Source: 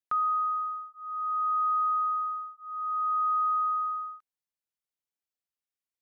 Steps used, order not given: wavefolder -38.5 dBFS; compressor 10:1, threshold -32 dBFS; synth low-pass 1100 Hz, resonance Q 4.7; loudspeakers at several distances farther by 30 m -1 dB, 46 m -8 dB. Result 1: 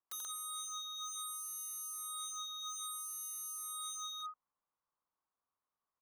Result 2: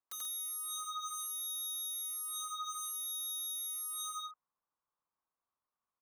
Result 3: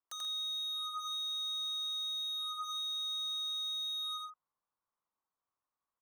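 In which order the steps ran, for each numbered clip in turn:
loudspeakers at several distances > compressor > synth low-pass > wavefolder; compressor > synth low-pass > wavefolder > loudspeakers at several distances; synth low-pass > compressor > wavefolder > loudspeakers at several distances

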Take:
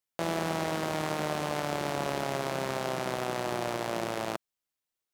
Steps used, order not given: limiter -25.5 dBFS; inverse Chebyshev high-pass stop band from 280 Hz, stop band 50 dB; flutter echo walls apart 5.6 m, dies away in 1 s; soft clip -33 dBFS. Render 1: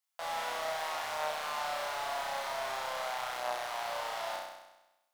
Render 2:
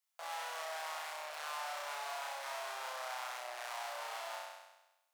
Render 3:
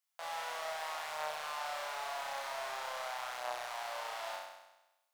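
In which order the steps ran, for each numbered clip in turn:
inverse Chebyshev high-pass > soft clip > limiter > flutter echo; limiter > flutter echo > soft clip > inverse Chebyshev high-pass; limiter > inverse Chebyshev high-pass > soft clip > flutter echo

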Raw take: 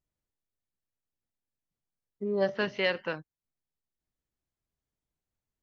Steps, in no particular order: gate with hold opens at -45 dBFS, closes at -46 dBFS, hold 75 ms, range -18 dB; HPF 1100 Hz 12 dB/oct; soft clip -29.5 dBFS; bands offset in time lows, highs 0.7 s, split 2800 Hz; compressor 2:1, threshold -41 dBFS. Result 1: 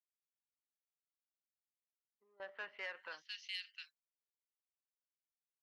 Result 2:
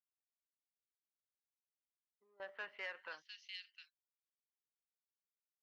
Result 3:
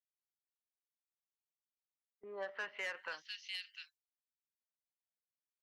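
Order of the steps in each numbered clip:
bands offset in time > compressor > soft clip > HPF > gate with hold; compressor > bands offset in time > soft clip > HPF > gate with hold; HPF > gate with hold > bands offset in time > soft clip > compressor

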